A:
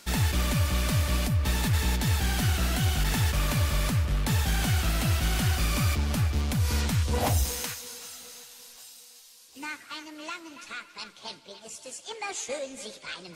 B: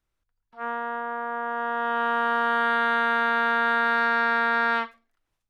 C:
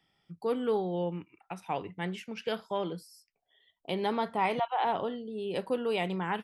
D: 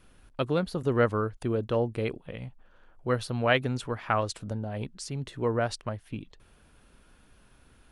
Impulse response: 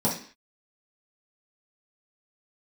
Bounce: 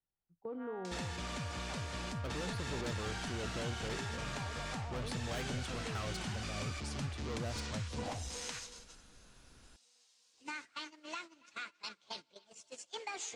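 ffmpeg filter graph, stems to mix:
-filter_complex "[0:a]highpass=f=150:p=1,acompressor=mode=upward:threshold=0.0112:ratio=2.5,lowpass=f=7900:w=0.5412,lowpass=f=7900:w=1.3066,adelay=850,volume=0.75[s0];[1:a]volume=0.106[s1];[2:a]alimiter=level_in=1.06:limit=0.0631:level=0:latency=1:release=33,volume=0.944,lowpass=1100,volume=0.473[s2];[3:a]adelay=1850,volume=0.75[s3];[s1][s3]amix=inputs=2:normalize=0,volume=47.3,asoftclip=hard,volume=0.0211,alimiter=level_in=5.96:limit=0.0631:level=0:latency=1:release=181,volume=0.168,volume=1[s4];[s0][s2]amix=inputs=2:normalize=0,agate=range=0.126:threshold=0.00708:ratio=16:detection=peak,acompressor=threshold=0.0112:ratio=5,volume=1[s5];[s4][s5]amix=inputs=2:normalize=0"

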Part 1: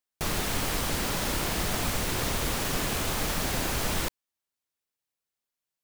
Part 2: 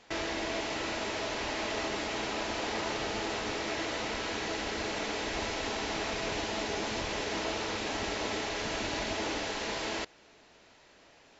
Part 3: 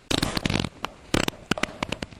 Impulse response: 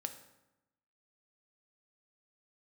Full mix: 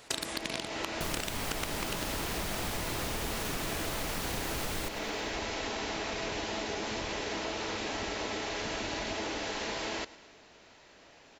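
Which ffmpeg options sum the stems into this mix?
-filter_complex "[0:a]adelay=800,volume=1.19,asplit=2[s0][s1];[s1]volume=0.168[s2];[1:a]volume=1.26,asplit=2[s3][s4];[s4]volume=0.0891[s5];[2:a]highpass=f=280:p=1,highshelf=f=4000:g=11,volume=0.631[s6];[s2][s5]amix=inputs=2:normalize=0,aecho=0:1:106|212|318|424|530|636|742|848:1|0.54|0.292|0.157|0.085|0.0459|0.0248|0.0134[s7];[s0][s3][s6][s7]amix=inputs=4:normalize=0,acompressor=threshold=0.0251:ratio=5"

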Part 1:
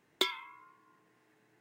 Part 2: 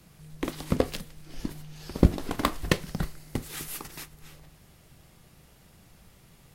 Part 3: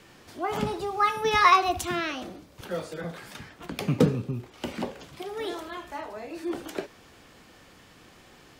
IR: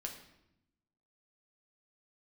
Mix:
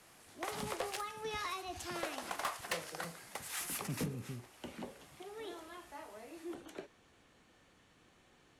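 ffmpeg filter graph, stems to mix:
-filter_complex "[1:a]highpass=f=640:w=0.5412,highpass=f=640:w=1.3066,equalizer=f=3900:t=o:w=0.91:g=-4,volume=1.06[s0];[2:a]bandreject=f=5000:w=7.7,acrossover=split=330|3000[s1][s2][s3];[s2]acompressor=threshold=0.0447:ratio=6[s4];[s1][s4][s3]amix=inputs=3:normalize=0,volume=0.224[s5];[s0][s5]amix=inputs=2:normalize=0,lowpass=f=12000:w=0.5412,lowpass=f=12000:w=1.3066,asoftclip=type=tanh:threshold=0.0316"

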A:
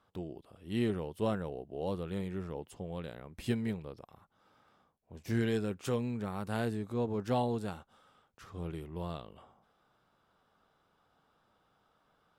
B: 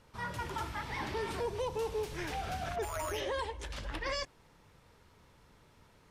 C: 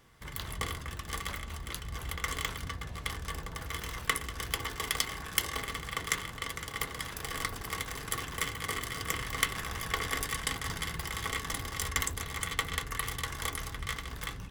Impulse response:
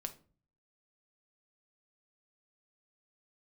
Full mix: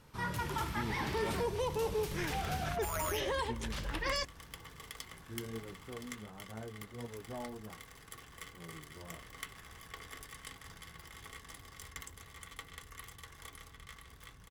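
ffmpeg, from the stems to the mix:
-filter_complex "[0:a]lowpass=1300,flanger=delay=16.5:depth=3.8:speed=1.4,volume=0.355[s0];[1:a]equalizer=f=160:t=o:w=0.67:g=5,equalizer=f=630:t=o:w=0.67:g=-3,equalizer=f=16000:t=o:w=0.67:g=10,volume=1.19[s1];[2:a]volume=0.158,asplit=2[s2][s3];[s3]volume=0.335,aecho=0:1:1019:1[s4];[s0][s1][s2][s4]amix=inputs=4:normalize=0"

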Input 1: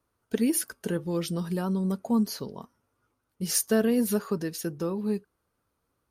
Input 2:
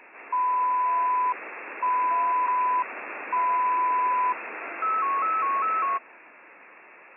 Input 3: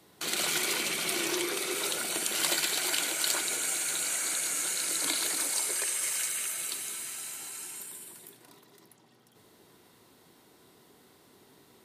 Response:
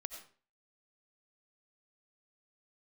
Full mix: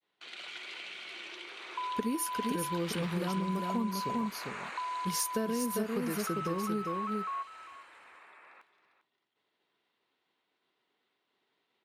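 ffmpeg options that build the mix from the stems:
-filter_complex "[0:a]adelay=1650,volume=0.794,asplit=2[s0][s1];[s1]volume=0.562[s2];[1:a]equalizer=f=1200:t=o:w=1.9:g=11.5,acompressor=threshold=0.0891:ratio=6,adelay=1450,volume=0.188,asplit=2[s3][s4];[s4]volume=0.188[s5];[2:a]lowpass=f=3000:t=q:w=1.7,agate=range=0.0224:threshold=0.00178:ratio=3:detection=peak,highpass=f=720:p=1,volume=0.2,asplit=2[s6][s7];[s7]volume=0.447[s8];[s2][s5][s8]amix=inputs=3:normalize=0,aecho=0:1:399:1[s9];[s0][s3][s6][s9]amix=inputs=4:normalize=0,acompressor=threshold=0.0355:ratio=6"

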